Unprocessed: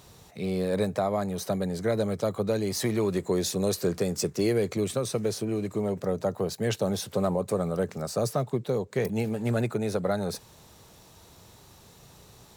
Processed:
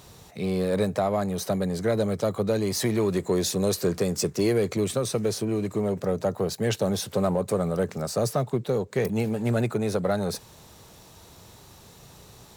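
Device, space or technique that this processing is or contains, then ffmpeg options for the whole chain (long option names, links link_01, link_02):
parallel distortion: -filter_complex "[0:a]asplit=2[link_01][link_02];[link_02]asoftclip=type=hard:threshold=-29.5dB,volume=-10.5dB[link_03];[link_01][link_03]amix=inputs=2:normalize=0,volume=1dB"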